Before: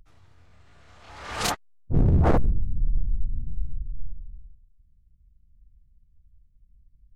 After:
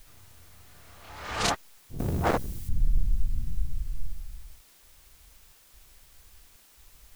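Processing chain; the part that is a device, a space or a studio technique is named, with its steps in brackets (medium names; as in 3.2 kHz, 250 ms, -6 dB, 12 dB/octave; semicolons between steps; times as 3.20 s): worn cassette (low-pass 9.1 kHz; wow and flutter; level dips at 1.78/4.61/5.52/6.56 s, 216 ms -18 dB; white noise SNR 33 dB); 1.99–2.69 s: tilt EQ +3 dB/octave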